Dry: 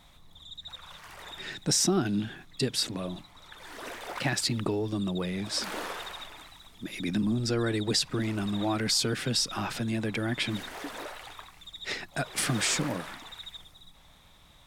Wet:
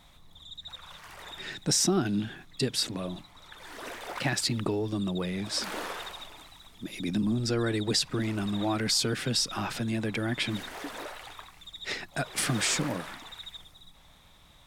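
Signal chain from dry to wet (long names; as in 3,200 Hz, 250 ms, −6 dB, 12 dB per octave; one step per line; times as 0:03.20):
0:06.09–0:07.26: dynamic equaliser 1,700 Hz, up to −5 dB, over −55 dBFS, Q 1.3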